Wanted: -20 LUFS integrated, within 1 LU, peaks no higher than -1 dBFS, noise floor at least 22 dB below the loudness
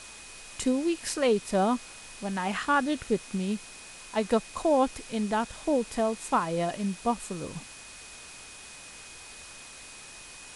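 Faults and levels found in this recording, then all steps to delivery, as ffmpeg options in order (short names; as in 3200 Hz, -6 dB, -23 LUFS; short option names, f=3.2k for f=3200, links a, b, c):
steady tone 2500 Hz; tone level -51 dBFS; noise floor -47 dBFS; noise floor target -51 dBFS; loudness -29.0 LUFS; peak -13.0 dBFS; loudness target -20.0 LUFS
-> -af "bandreject=f=2.5k:w=30"
-af "afftdn=nr=6:nf=-47"
-af "volume=9dB"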